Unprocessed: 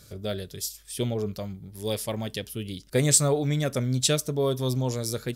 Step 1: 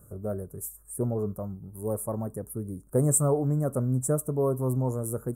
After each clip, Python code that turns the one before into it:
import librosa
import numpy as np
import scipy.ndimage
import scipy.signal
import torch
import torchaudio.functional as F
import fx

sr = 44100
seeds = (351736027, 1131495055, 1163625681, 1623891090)

y = scipy.signal.sosfilt(scipy.signal.ellip(3, 1.0, 60, [1200.0, 8800.0], 'bandstop', fs=sr, output='sos'), x)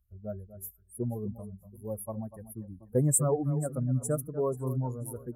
y = fx.bin_expand(x, sr, power=2.0)
y = fx.echo_alternate(y, sr, ms=243, hz=1700.0, feedback_pct=56, wet_db=-13.5)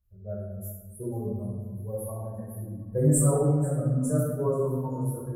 y = fx.room_shoebox(x, sr, seeds[0], volume_m3=710.0, walls='mixed', distance_m=5.3)
y = y * 10.0 ** (-8.5 / 20.0)